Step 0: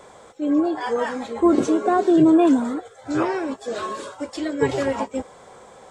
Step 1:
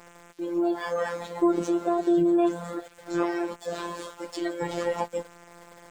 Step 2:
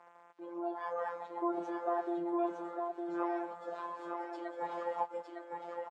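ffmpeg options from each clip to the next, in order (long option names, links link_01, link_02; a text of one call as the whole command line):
ffmpeg -i in.wav -af "acompressor=threshold=-19dB:ratio=3,afftfilt=real='hypot(re,im)*cos(PI*b)':imag='0':win_size=1024:overlap=0.75,aeval=exprs='val(0)*gte(abs(val(0)),0.00398)':channel_layout=same" out.wav
ffmpeg -i in.wav -filter_complex "[0:a]bandpass=frequency=890:width_type=q:width=1.9:csg=0,asplit=2[link_01][link_02];[link_02]aecho=0:1:908:0.631[link_03];[link_01][link_03]amix=inputs=2:normalize=0,volume=-3dB" out.wav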